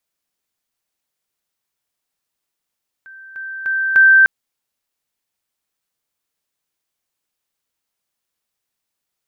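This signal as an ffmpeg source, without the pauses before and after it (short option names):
-f lavfi -i "aevalsrc='pow(10,(-36+10*floor(t/0.3))/20)*sin(2*PI*1560*t)':d=1.2:s=44100"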